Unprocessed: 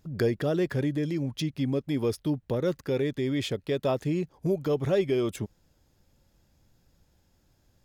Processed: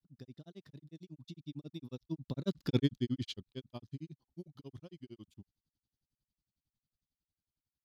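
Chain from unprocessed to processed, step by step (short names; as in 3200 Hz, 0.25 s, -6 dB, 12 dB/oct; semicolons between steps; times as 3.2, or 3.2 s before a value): Doppler pass-by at 2.73, 25 m/s, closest 3.2 m; ten-band EQ 125 Hz +4 dB, 250 Hz +6 dB, 500 Hz -10 dB, 2000 Hz -9 dB, 4000 Hz +11 dB, 8000 Hz -3 dB; grains 73 ms, grains 11/s, spray 19 ms, pitch spread up and down by 0 st; gain +4 dB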